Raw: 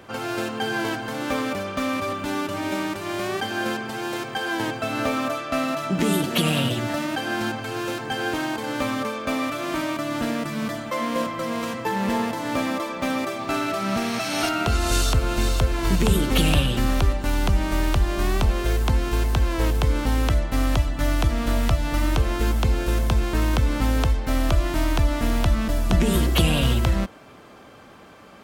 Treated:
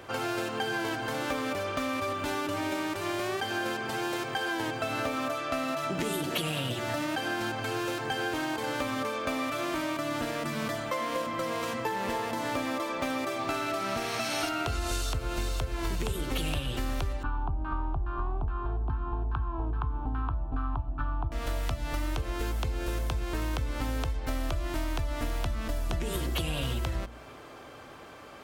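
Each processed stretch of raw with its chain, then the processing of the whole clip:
17.23–21.32 s: LFO low-pass saw down 2.4 Hz 550–1500 Hz + static phaser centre 2 kHz, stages 6
whole clip: peaking EQ 200 Hz -12 dB 0.32 oct; de-hum 58.39 Hz, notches 5; compression, threshold -28 dBFS

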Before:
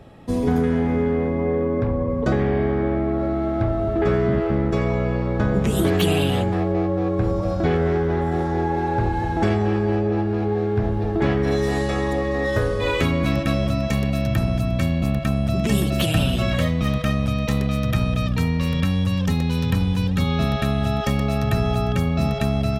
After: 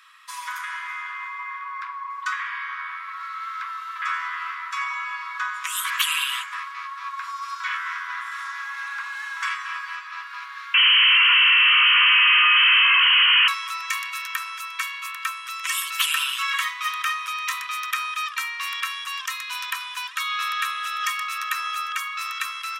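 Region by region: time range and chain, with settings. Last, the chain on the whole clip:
10.74–13.48 s: one-bit comparator + frequency inversion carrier 3.1 kHz
whole clip: Chebyshev high-pass 980 Hz, order 10; dynamic bell 4.3 kHz, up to -6 dB, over -52 dBFS, Q 2.5; trim +7 dB

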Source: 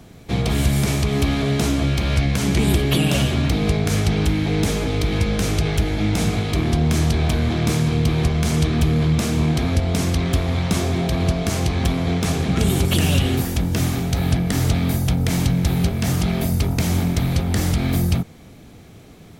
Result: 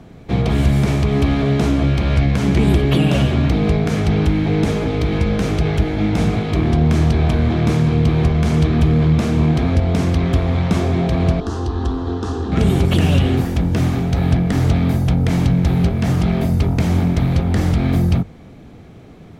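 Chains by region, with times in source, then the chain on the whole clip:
11.40–12.52 s: low-pass 6.4 kHz + static phaser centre 600 Hz, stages 6
whole clip: low-pass 1.7 kHz 6 dB/octave; hum notches 50/100 Hz; trim +4 dB

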